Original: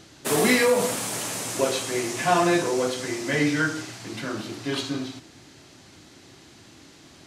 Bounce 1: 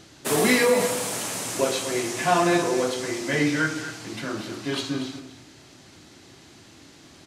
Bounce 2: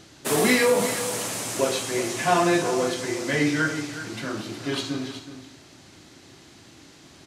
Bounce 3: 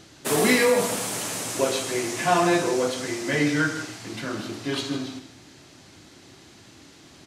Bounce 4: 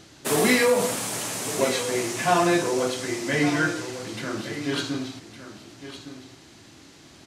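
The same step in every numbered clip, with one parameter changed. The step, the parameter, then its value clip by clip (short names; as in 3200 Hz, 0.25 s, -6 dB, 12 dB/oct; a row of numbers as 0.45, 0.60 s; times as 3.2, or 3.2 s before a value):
echo, time: 0.237, 0.369, 0.154, 1.16 s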